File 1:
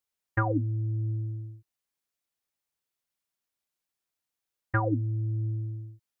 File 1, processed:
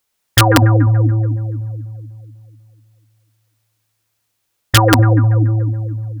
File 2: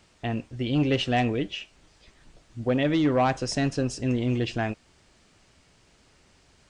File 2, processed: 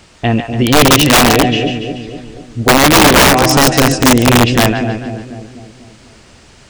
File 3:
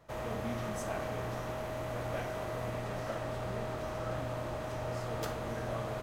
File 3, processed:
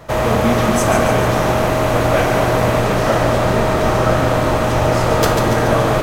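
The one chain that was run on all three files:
echo with a time of its own for lows and highs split 650 Hz, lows 247 ms, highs 143 ms, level −6 dB
wrap-around overflow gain 17.5 dB
normalise the peak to −1.5 dBFS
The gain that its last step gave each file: +16.0, +16.0, +22.0 decibels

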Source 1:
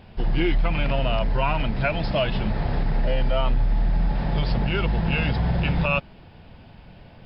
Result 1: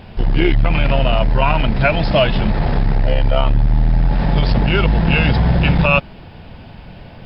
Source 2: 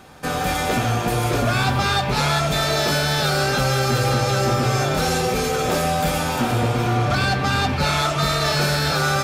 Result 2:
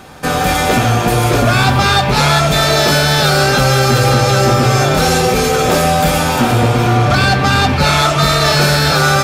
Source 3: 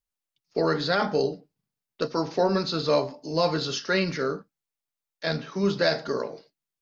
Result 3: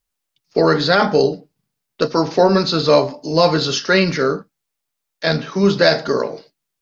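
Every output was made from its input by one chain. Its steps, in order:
saturating transformer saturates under 100 Hz
normalise the peak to −1.5 dBFS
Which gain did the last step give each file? +9.5, +8.5, +10.0 decibels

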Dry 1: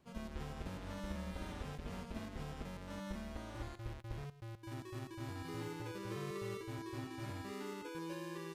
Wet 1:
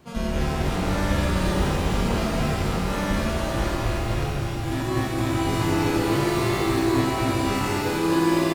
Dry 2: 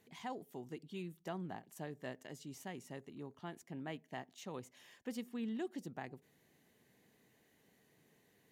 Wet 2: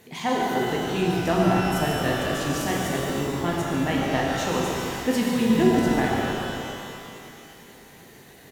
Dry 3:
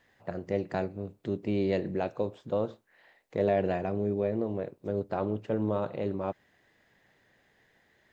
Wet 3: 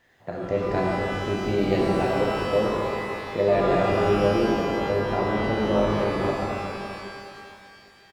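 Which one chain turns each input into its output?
echo with shifted repeats 144 ms, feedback 49%, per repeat −61 Hz, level −9.5 dB
reverb with rising layers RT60 2.5 s, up +12 semitones, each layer −8 dB, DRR −3 dB
loudness normalisation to −24 LKFS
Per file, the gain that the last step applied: +15.5, +17.0, +2.0 decibels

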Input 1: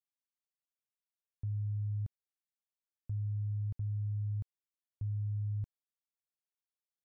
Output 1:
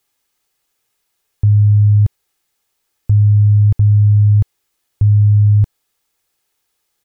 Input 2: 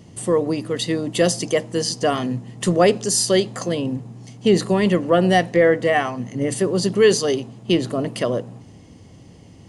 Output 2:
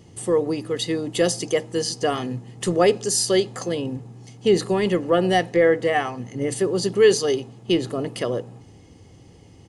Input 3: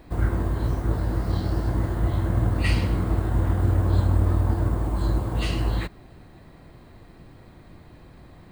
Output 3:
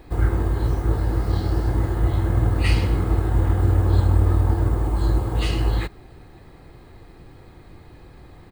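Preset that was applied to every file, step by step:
comb filter 2.4 ms, depth 35%
normalise the peak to −6 dBFS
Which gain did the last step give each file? +25.0, −3.0, +2.0 decibels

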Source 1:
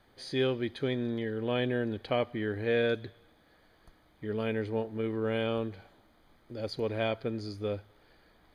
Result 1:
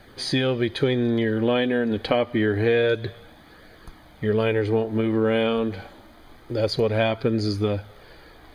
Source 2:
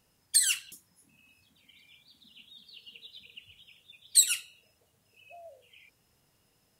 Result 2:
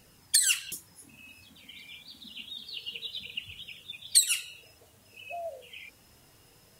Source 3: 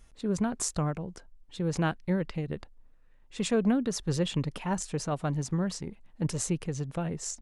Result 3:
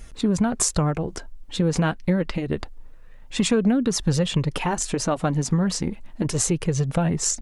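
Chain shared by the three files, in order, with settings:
downward compressor 4 to 1, threshold −33 dBFS
flanger 0.27 Hz, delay 0.4 ms, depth 4 ms, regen −54%
normalise the peak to −6 dBFS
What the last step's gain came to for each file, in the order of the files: +18.5, +15.5, +18.5 decibels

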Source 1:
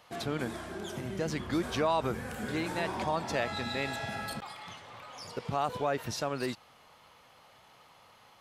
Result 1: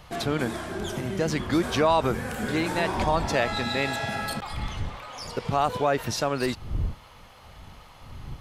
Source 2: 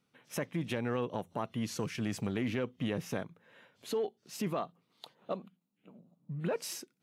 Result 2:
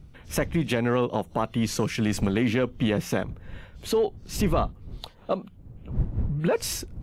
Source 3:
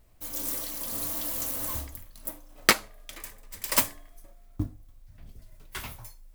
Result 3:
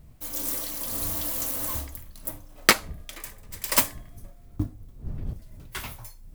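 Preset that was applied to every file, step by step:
wind on the microphone 95 Hz −45 dBFS
loudness normalisation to −27 LKFS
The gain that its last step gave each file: +7.0, +10.0, +2.5 decibels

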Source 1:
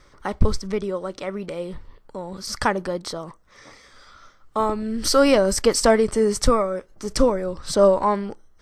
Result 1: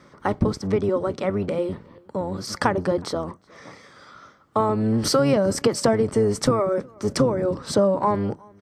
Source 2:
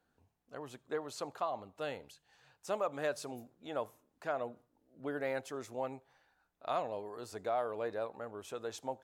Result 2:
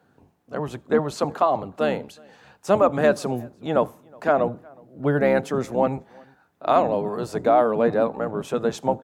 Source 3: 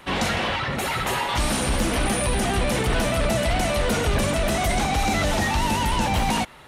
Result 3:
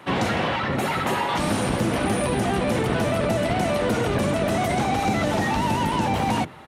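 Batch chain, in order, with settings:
sub-octave generator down 1 octave, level +2 dB
high-pass filter 150 Hz 12 dB per octave
high-shelf EQ 2,100 Hz −9 dB
downward compressor 6 to 1, threshold −22 dBFS
slap from a distant wall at 63 metres, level −27 dB
loudness normalisation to −23 LKFS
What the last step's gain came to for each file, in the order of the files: +6.0, +17.5, +4.0 decibels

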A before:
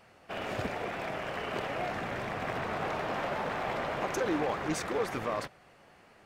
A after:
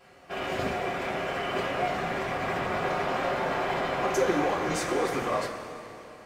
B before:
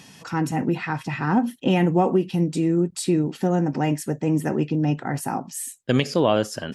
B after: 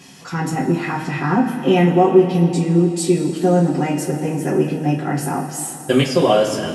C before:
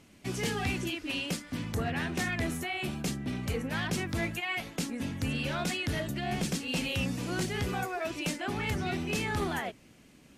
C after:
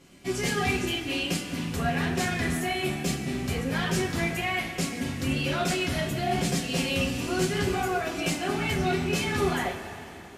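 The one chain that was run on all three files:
coupled-rooms reverb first 0.2 s, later 3.1 s, from −18 dB, DRR −6 dB
level −2 dB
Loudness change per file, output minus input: +5.0, +5.5, +5.0 LU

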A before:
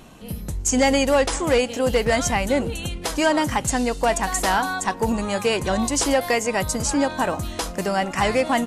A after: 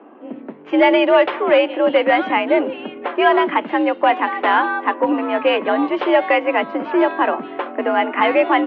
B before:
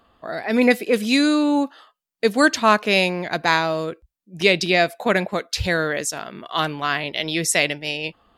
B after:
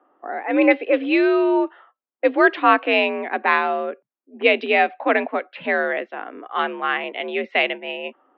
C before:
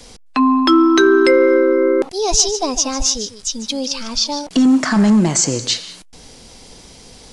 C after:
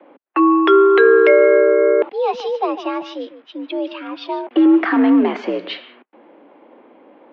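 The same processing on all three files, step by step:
low-pass that shuts in the quiet parts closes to 1,100 Hz, open at −11 dBFS
single-sideband voice off tune +63 Hz 190–3,000 Hz
normalise the peak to −1.5 dBFS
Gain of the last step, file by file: +5.5, +1.0, +0.5 decibels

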